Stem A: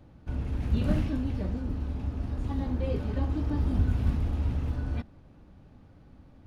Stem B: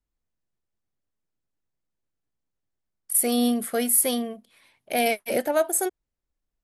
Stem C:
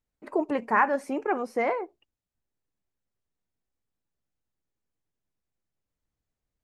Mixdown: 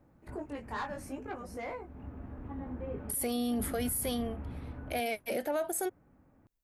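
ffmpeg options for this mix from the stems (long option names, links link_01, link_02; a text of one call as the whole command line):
ffmpeg -i stem1.wav -i stem2.wav -i stem3.wav -filter_complex "[0:a]lowpass=frequency=2100:width=0.5412,lowpass=frequency=2100:width=1.3066,lowshelf=frequency=130:gain=-11,volume=-5.5dB[link_01];[1:a]equalizer=frequency=8600:width=1.1:gain=-5,acontrast=51,volume=-1.5dB,afade=type=out:start_time=3.27:duration=0.5:silence=0.375837[link_02];[2:a]aemphasis=mode=production:type=75kf,asoftclip=type=tanh:threshold=-17dB,flanger=delay=17.5:depth=4.1:speed=0.72,volume=-10dB,asplit=2[link_03][link_04];[link_04]apad=whole_len=285302[link_05];[link_01][link_05]sidechaincompress=threshold=-47dB:ratio=8:attack=16:release=335[link_06];[link_06][link_02][link_03]amix=inputs=3:normalize=0,alimiter=level_in=1dB:limit=-24dB:level=0:latency=1:release=24,volume=-1dB" out.wav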